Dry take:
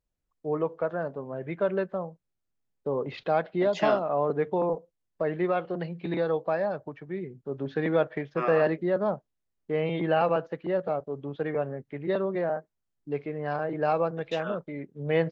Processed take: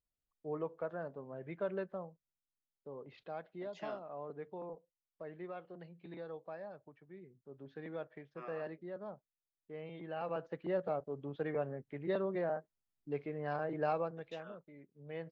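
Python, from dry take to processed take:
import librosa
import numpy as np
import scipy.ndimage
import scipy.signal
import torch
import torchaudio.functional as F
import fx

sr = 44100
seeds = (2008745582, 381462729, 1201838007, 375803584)

y = fx.gain(x, sr, db=fx.line((1.97, -11.0), (2.88, -19.0), (10.11, -19.0), (10.57, -7.5), (13.83, -7.5), (14.6, -19.5)))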